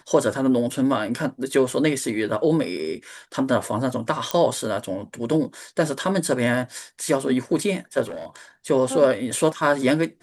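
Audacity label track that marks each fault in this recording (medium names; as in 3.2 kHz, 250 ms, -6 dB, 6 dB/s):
4.310000	4.310000	pop -9 dBFS
8.040000	8.360000	clipped -29 dBFS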